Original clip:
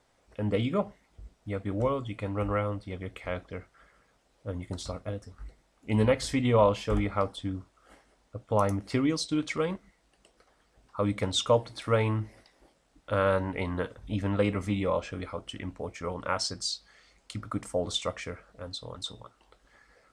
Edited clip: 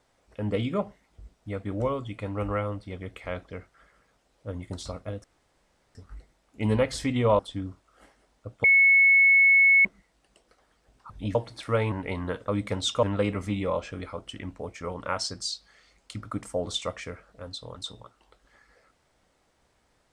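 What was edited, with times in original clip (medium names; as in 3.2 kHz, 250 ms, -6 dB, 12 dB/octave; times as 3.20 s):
5.24 s: insert room tone 0.71 s
6.68–7.28 s: delete
8.53–9.74 s: bleep 2.2 kHz -14.5 dBFS
10.99–11.54 s: swap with 13.98–14.23 s
12.11–13.42 s: delete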